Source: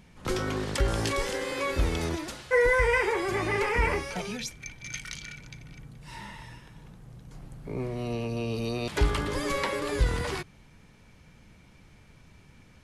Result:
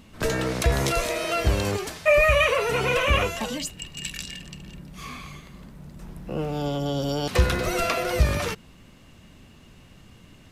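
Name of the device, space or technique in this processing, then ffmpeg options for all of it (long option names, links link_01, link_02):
nightcore: -af "asetrate=53802,aresample=44100,volume=4.5dB"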